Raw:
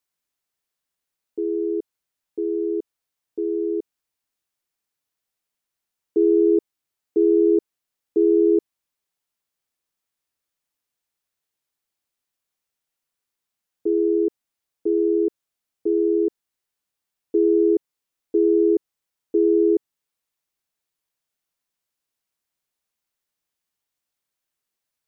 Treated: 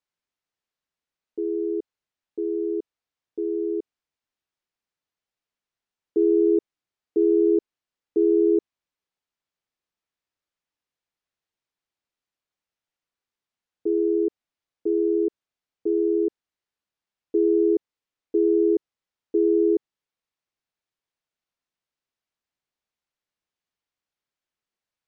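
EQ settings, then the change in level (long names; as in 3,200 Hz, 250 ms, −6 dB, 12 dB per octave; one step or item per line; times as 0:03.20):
high-frequency loss of the air 96 metres
−2.0 dB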